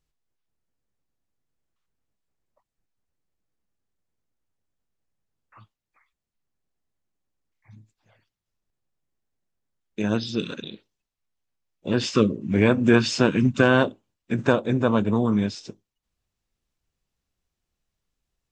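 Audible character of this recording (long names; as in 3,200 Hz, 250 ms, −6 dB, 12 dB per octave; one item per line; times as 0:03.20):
background noise floor −86 dBFS
spectral slope −5.5 dB per octave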